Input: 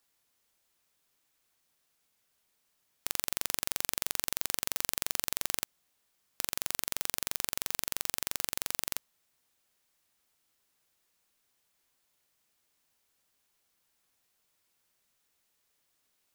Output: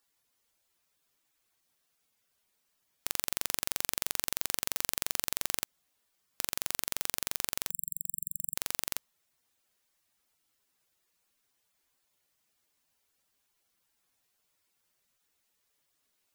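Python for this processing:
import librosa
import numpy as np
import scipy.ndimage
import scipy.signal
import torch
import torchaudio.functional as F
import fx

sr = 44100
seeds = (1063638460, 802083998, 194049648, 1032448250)

y = fx.spec_gate(x, sr, threshold_db=-10, keep='strong')
y = fx.brickwall_bandstop(y, sr, low_hz=170.0, high_hz=7400.0, at=(7.69, 8.55), fade=0.02)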